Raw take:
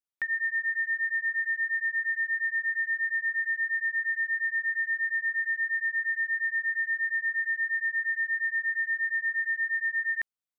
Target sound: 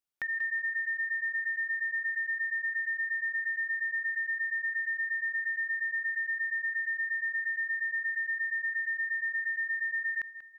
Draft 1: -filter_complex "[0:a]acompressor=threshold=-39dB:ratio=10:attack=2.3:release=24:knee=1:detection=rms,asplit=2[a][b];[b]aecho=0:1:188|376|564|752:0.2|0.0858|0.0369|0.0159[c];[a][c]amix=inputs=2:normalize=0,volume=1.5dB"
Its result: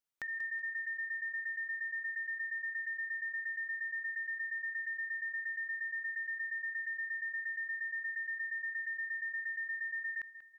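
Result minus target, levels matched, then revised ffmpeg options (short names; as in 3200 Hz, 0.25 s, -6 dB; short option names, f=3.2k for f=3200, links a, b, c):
compressor: peak gain reduction +7 dB
-filter_complex "[0:a]acompressor=threshold=-31.5dB:ratio=10:attack=2.3:release=24:knee=1:detection=rms,asplit=2[a][b];[b]aecho=0:1:188|376|564|752:0.2|0.0858|0.0369|0.0159[c];[a][c]amix=inputs=2:normalize=0,volume=1.5dB"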